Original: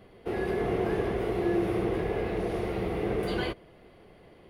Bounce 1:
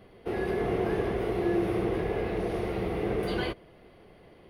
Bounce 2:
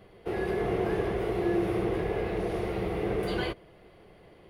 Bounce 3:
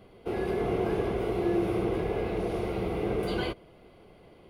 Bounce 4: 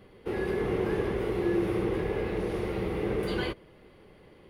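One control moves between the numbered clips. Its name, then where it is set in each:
notch filter, centre frequency: 7,500, 250, 1,800, 690 Hertz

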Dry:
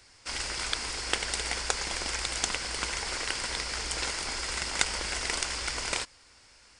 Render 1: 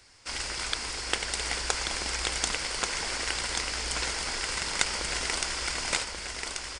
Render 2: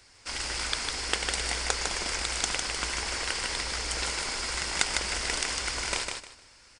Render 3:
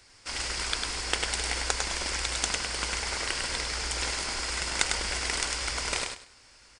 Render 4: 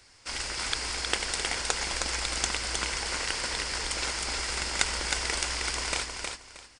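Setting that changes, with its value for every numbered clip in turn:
repeating echo, delay time: 1,135, 153, 101, 314 milliseconds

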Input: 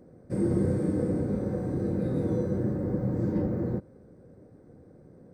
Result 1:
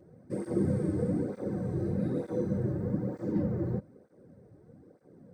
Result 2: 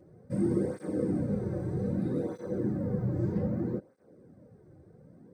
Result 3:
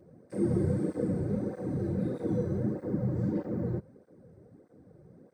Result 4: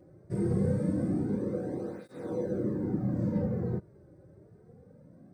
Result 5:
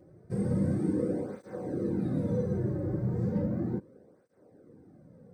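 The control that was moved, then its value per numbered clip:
through-zero flanger with one copy inverted, nulls at: 1.1, 0.63, 1.6, 0.24, 0.35 Hertz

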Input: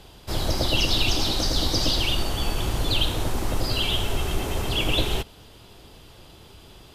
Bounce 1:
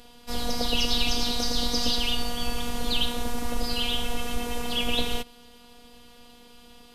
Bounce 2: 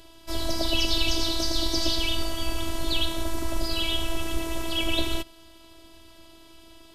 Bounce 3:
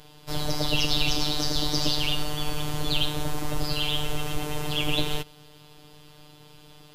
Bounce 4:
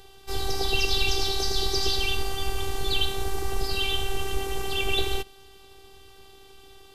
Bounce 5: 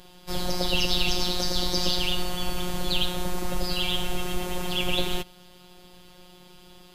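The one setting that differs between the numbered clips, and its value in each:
phases set to zero, frequency: 240, 330, 150, 390, 180 Hertz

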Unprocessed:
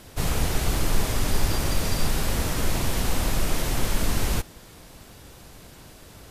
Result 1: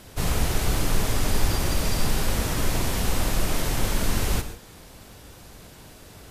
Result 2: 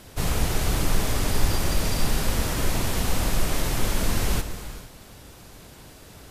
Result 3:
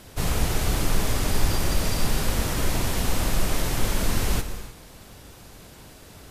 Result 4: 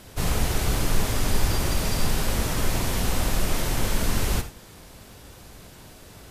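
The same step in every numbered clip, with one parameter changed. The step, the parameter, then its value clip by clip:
reverb whose tail is shaped and stops, gate: 170, 490, 330, 110 milliseconds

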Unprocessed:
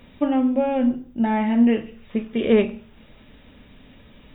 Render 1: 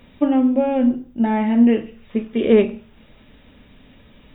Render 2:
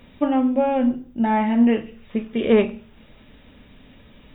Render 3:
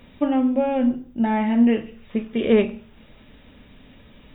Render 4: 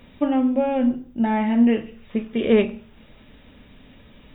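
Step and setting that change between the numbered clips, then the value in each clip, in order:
dynamic equaliser, frequency: 340, 1,000, 10,000, 3,200 Hertz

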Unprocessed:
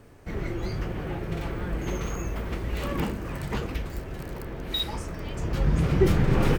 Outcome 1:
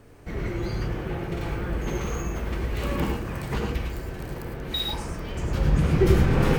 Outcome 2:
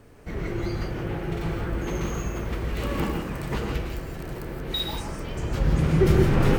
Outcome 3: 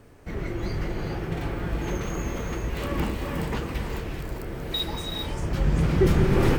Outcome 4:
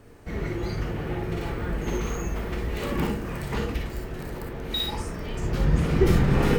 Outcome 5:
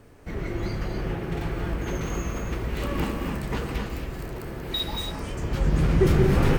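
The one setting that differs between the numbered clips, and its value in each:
reverb whose tail is shaped and stops, gate: 130, 190, 450, 80, 300 milliseconds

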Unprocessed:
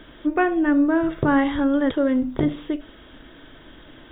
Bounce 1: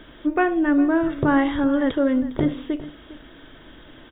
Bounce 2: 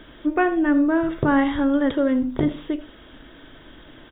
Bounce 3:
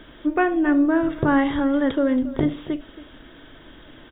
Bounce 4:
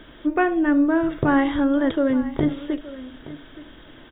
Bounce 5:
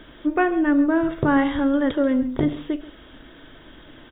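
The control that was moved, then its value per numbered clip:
single-tap delay, delay time: 406, 83, 276, 873, 135 milliseconds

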